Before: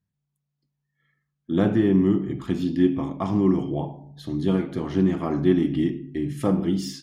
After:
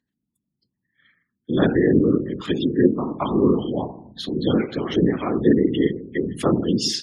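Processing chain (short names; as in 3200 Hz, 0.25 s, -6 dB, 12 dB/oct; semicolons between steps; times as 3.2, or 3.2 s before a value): spectral gate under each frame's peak -30 dB strong; whisperiser; weighting filter D; gain +4 dB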